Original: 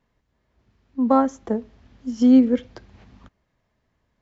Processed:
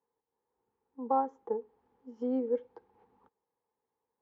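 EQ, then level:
pair of resonant band-passes 630 Hz, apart 0.84 octaves
−2.5 dB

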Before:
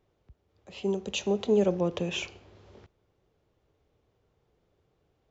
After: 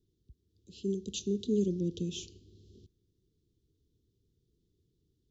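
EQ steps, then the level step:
inverse Chebyshev band-stop filter 610–2,200 Hz, stop band 40 dB
−1.5 dB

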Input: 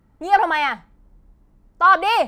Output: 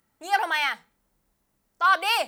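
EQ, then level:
spectral tilt +4 dB per octave
parametric band 1,000 Hz −2.5 dB 0.77 octaves
mains-hum notches 60/120/180/240/300/360/420/480 Hz
−6.0 dB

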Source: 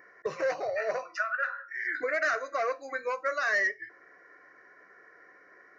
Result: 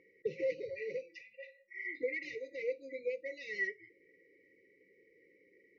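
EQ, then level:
linear-phase brick-wall band-stop 550–1,900 Hz
low-pass filter 3,300 Hz 12 dB per octave
high-frequency loss of the air 58 metres
−2.5 dB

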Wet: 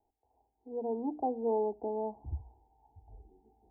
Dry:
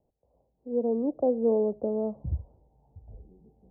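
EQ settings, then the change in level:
parametric band 850 Hz +12 dB 0.48 octaves
mains-hum notches 60/120/180/240/300 Hz
phaser with its sweep stopped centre 830 Hz, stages 8
−4.0 dB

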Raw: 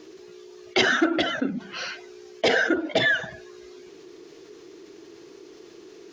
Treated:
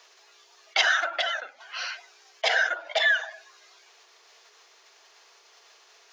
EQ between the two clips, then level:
Butterworth high-pass 650 Hz 36 dB per octave
0.0 dB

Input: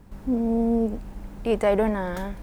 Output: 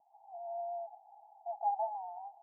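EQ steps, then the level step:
linear-phase brick-wall high-pass 670 Hz
Chebyshev low-pass with heavy ripple 870 Hz, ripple 6 dB
+3.5 dB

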